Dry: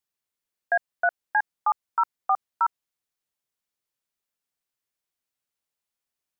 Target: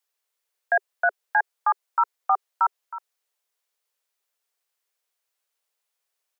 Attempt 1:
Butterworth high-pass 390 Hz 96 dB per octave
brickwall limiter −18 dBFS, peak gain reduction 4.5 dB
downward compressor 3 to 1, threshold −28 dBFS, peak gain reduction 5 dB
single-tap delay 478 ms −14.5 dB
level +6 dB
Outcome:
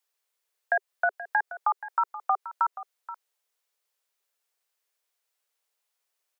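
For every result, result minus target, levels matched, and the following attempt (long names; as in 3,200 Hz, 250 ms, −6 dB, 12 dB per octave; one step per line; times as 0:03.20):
echo 161 ms late; downward compressor: peak gain reduction +5 dB
Butterworth high-pass 390 Hz 96 dB per octave
brickwall limiter −18 dBFS, peak gain reduction 4.5 dB
downward compressor 3 to 1, threshold −28 dBFS, peak gain reduction 5 dB
single-tap delay 317 ms −14.5 dB
level +6 dB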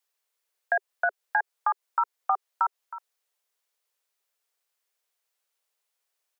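downward compressor: peak gain reduction +5 dB
Butterworth high-pass 390 Hz 96 dB per octave
brickwall limiter −18 dBFS, peak gain reduction 4.5 dB
single-tap delay 317 ms −14.5 dB
level +6 dB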